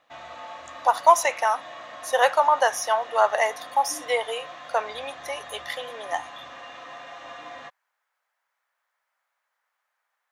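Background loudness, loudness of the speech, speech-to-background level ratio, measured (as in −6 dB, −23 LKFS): −40.5 LKFS, −23.5 LKFS, 17.0 dB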